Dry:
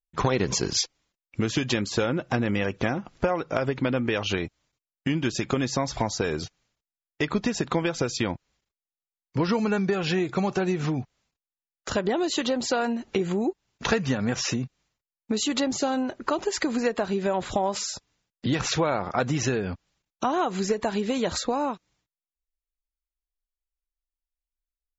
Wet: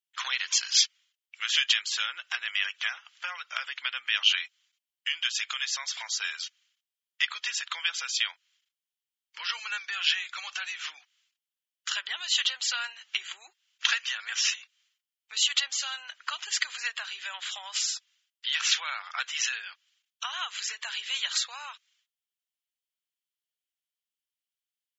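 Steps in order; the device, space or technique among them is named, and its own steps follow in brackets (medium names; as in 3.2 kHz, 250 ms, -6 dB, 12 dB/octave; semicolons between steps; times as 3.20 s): headphones lying on a table (high-pass 1.5 kHz 24 dB/octave; peaking EQ 3.1 kHz +10 dB 0.34 oct); 0.69–1.67 s: dynamic bell 1.7 kHz, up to +4 dB, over -43 dBFS, Q 0.79; trim +2 dB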